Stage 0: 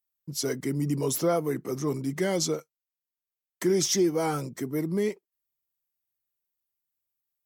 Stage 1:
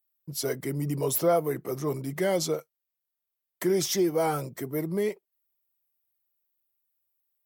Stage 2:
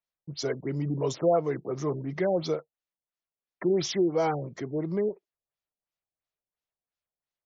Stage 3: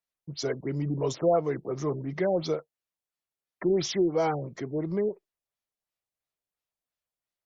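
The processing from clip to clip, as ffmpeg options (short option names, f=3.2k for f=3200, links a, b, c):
-af "equalizer=f=250:t=o:w=0.67:g=-6,equalizer=f=630:t=o:w=0.67:g=5,equalizer=f=6.3k:t=o:w=0.67:g=-6,equalizer=f=16k:t=o:w=0.67:g=8"
-af "afftfilt=real='re*lt(b*sr/1024,820*pow(7500/820,0.5+0.5*sin(2*PI*2.9*pts/sr)))':imag='im*lt(b*sr/1024,820*pow(7500/820,0.5+0.5*sin(2*PI*2.9*pts/sr)))':win_size=1024:overlap=0.75"
-ar 48000 -c:a libopus -b:a 64k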